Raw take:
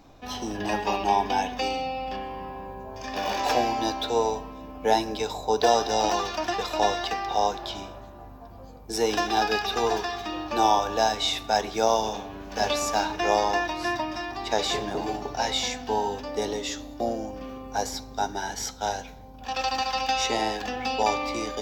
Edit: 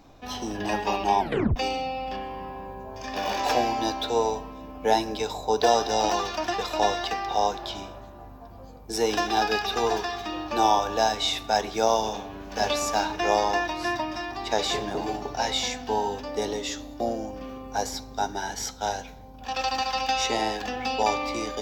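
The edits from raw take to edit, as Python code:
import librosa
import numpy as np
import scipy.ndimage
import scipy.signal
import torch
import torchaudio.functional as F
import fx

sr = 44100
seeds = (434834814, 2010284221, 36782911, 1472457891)

y = fx.edit(x, sr, fx.tape_stop(start_s=1.2, length_s=0.36), tone=tone)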